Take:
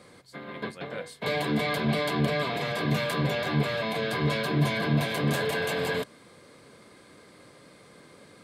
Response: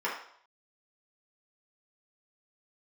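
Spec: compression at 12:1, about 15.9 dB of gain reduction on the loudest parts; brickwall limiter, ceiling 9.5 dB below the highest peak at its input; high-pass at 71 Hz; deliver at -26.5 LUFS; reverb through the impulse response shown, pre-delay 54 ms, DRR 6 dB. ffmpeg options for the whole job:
-filter_complex "[0:a]highpass=71,acompressor=threshold=-37dB:ratio=12,alimiter=level_in=12dB:limit=-24dB:level=0:latency=1,volume=-12dB,asplit=2[a][b];[1:a]atrim=start_sample=2205,adelay=54[c];[b][c]afir=irnorm=-1:irlink=0,volume=-15dB[d];[a][d]amix=inputs=2:normalize=0,volume=18.5dB"

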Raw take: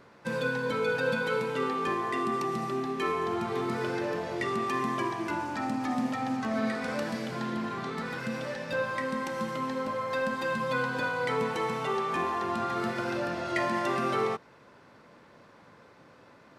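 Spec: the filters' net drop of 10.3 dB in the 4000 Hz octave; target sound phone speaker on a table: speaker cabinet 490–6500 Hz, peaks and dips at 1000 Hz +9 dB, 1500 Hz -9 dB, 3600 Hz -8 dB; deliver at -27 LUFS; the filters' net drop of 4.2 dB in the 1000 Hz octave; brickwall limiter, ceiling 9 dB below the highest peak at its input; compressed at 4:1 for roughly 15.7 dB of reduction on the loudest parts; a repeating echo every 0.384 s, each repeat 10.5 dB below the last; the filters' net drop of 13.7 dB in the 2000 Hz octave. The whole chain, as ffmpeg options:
-af "equalizer=f=1k:t=o:g=-7.5,equalizer=f=2k:t=o:g=-7.5,equalizer=f=4k:t=o:g=-5.5,acompressor=threshold=-47dB:ratio=4,alimiter=level_in=19.5dB:limit=-24dB:level=0:latency=1,volume=-19.5dB,highpass=f=490:w=0.5412,highpass=f=490:w=1.3066,equalizer=f=1k:t=q:w=4:g=9,equalizer=f=1.5k:t=q:w=4:g=-9,equalizer=f=3.6k:t=q:w=4:g=-8,lowpass=f=6.5k:w=0.5412,lowpass=f=6.5k:w=1.3066,aecho=1:1:384|768|1152:0.299|0.0896|0.0269,volume=27.5dB"

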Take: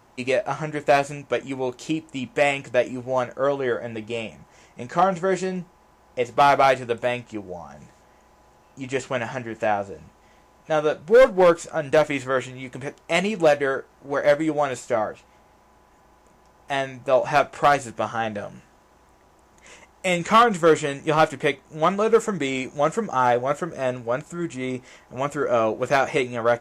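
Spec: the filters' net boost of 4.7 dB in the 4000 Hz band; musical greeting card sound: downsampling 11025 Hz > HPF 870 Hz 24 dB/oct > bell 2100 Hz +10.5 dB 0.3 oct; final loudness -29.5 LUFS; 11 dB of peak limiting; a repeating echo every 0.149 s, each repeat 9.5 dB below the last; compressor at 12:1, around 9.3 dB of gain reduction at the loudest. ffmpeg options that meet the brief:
-af "equalizer=f=4k:t=o:g=5.5,acompressor=threshold=-20dB:ratio=12,alimiter=limit=-20.5dB:level=0:latency=1,aecho=1:1:149|298|447|596:0.335|0.111|0.0365|0.012,aresample=11025,aresample=44100,highpass=f=870:w=0.5412,highpass=f=870:w=1.3066,equalizer=f=2.1k:t=o:w=0.3:g=10.5,volume=3.5dB"

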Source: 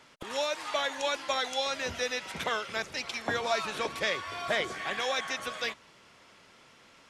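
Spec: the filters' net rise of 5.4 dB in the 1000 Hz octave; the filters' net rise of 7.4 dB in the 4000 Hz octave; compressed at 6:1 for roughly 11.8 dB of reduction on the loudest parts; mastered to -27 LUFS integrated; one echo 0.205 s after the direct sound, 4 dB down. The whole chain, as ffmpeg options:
-af "equalizer=f=1k:t=o:g=6.5,equalizer=f=4k:t=o:g=8.5,acompressor=threshold=-34dB:ratio=6,aecho=1:1:205:0.631,volume=8dB"

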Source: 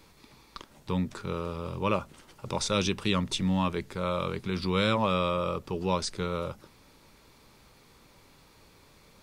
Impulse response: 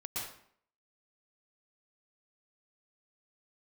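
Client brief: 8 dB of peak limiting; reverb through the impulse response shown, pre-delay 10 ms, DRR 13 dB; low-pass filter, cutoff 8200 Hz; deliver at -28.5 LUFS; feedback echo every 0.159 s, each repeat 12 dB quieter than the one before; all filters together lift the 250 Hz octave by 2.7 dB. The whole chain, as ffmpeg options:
-filter_complex "[0:a]lowpass=8.2k,equalizer=f=250:t=o:g=4,alimiter=limit=-18.5dB:level=0:latency=1,aecho=1:1:159|318|477:0.251|0.0628|0.0157,asplit=2[a][b];[1:a]atrim=start_sample=2205,adelay=10[c];[b][c]afir=irnorm=-1:irlink=0,volume=-14.5dB[d];[a][d]amix=inputs=2:normalize=0,volume=2dB"

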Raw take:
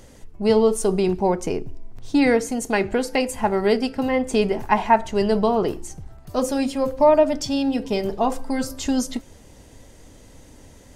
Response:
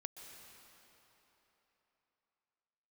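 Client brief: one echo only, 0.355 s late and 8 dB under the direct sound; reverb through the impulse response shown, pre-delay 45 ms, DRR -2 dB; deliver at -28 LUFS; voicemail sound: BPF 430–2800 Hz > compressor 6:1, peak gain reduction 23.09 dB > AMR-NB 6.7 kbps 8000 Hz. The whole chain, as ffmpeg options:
-filter_complex "[0:a]aecho=1:1:355:0.398,asplit=2[a][b];[1:a]atrim=start_sample=2205,adelay=45[c];[b][c]afir=irnorm=-1:irlink=0,volume=5.5dB[d];[a][d]amix=inputs=2:normalize=0,highpass=430,lowpass=2.8k,acompressor=threshold=-33dB:ratio=6,volume=9dB" -ar 8000 -c:a libopencore_amrnb -b:a 6700

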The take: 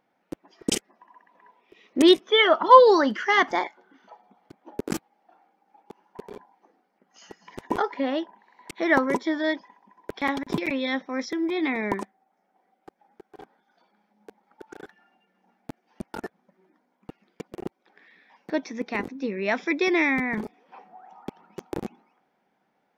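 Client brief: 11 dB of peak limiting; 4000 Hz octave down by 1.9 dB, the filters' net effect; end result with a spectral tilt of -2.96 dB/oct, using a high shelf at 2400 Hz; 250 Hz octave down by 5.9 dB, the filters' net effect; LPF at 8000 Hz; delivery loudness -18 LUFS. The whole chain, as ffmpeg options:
-af "lowpass=8k,equalizer=f=250:t=o:g=-9,highshelf=f=2.4k:g=7,equalizer=f=4k:t=o:g=-8.5,volume=8.5dB,alimiter=limit=-4dB:level=0:latency=1"

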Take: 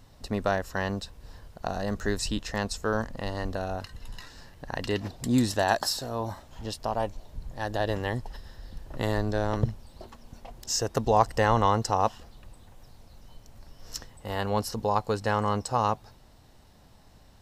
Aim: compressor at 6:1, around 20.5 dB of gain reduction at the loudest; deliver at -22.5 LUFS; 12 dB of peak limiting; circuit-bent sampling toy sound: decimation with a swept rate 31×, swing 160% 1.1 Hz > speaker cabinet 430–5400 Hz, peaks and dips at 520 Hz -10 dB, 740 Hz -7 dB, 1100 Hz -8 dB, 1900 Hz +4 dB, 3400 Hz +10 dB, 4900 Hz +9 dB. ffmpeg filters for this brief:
-af "acompressor=threshold=-39dB:ratio=6,alimiter=level_in=11.5dB:limit=-24dB:level=0:latency=1,volume=-11.5dB,acrusher=samples=31:mix=1:aa=0.000001:lfo=1:lforange=49.6:lforate=1.1,highpass=430,equalizer=f=520:t=q:w=4:g=-10,equalizer=f=740:t=q:w=4:g=-7,equalizer=f=1.1k:t=q:w=4:g=-8,equalizer=f=1.9k:t=q:w=4:g=4,equalizer=f=3.4k:t=q:w=4:g=10,equalizer=f=4.9k:t=q:w=4:g=9,lowpass=f=5.4k:w=0.5412,lowpass=f=5.4k:w=1.3066,volume=29dB"

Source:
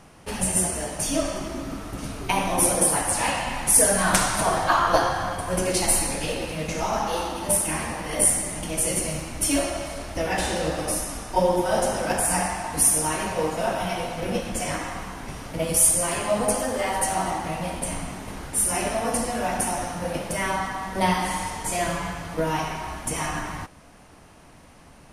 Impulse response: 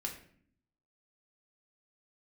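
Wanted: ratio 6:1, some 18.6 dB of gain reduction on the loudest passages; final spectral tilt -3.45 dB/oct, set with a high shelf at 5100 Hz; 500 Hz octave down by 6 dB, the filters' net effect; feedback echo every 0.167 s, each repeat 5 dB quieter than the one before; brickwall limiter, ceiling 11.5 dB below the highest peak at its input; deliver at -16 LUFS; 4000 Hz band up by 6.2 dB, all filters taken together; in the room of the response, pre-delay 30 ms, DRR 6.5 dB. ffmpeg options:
-filter_complex "[0:a]equalizer=f=500:t=o:g=-8,equalizer=f=4k:t=o:g=5.5,highshelf=f=5.1k:g=6,acompressor=threshold=-29dB:ratio=6,alimiter=limit=-23dB:level=0:latency=1,aecho=1:1:167|334|501|668|835|1002|1169:0.562|0.315|0.176|0.0988|0.0553|0.031|0.0173,asplit=2[a][b];[1:a]atrim=start_sample=2205,adelay=30[c];[b][c]afir=irnorm=-1:irlink=0,volume=-6.5dB[d];[a][d]amix=inputs=2:normalize=0,volume=14dB"

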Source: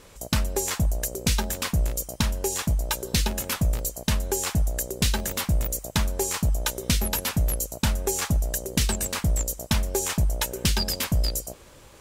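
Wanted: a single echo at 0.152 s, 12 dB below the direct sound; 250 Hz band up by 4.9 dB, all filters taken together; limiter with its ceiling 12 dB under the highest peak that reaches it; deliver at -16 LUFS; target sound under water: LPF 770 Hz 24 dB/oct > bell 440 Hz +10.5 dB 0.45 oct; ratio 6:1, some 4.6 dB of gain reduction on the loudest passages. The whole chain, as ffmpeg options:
-af "equalizer=f=250:t=o:g=5.5,acompressor=threshold=-22dB:ratio=6,alimiter=limit=-22dB:level=0:latency=1,lowpass=f=770:w=0.5412,lowpass=f=770:w=1.3066,equalizer=f=440:t=o:w=0.45:g=10.5,aecho=1:1:152:0.251,volume=16.5dB"

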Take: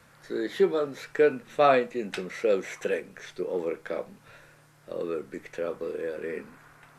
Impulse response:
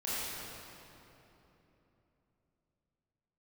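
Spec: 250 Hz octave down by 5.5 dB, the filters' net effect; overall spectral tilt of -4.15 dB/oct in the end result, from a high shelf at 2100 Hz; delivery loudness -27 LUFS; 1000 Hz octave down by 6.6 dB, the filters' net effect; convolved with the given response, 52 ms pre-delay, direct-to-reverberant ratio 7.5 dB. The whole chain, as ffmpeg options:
-filter_complex "[0:a]equalizer=f=250:t=o:g=-7.5,equalizer=f=1k:t=o:g=-8.5,highshelf=f=2.1k:g=-7.5,asplit=2[a][b];[1:a]atrim=start_sample=2205,adelay=52[c];[b][c]afir=irnorm=-1:irlink=0,volume=-13.5dB[d];[a][d]amix=inputs=2:normalize=0,volume=5.5dB"

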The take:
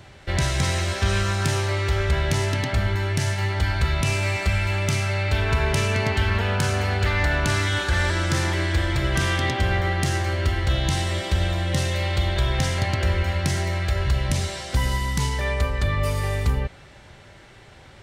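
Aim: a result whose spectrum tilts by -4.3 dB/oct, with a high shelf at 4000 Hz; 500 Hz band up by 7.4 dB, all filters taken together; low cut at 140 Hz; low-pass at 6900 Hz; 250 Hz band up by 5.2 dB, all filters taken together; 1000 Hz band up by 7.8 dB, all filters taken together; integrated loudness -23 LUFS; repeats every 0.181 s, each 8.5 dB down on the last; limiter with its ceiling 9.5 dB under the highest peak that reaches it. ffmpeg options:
-af "highpass=140,lowpass=6.9k,equalizer=f=250:t=o:g=6.5,equalizer=f=500:t=o:g=5.5,equalizer=f=1k:t=o:g=8.5,highshelf=f=4k:g=-8,alimiter=limit=-15.5dB:level=0:latency=1,aecho=1:1:181|362|543|724:0.376|0.143|0.0543|0.0206,volume=1dB"

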